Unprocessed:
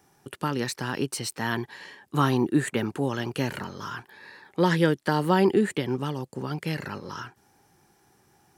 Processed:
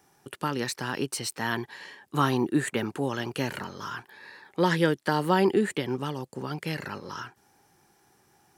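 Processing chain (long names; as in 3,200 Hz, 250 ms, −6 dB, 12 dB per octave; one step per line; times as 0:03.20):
low-shelf EQ 280 Hz −4.5 dB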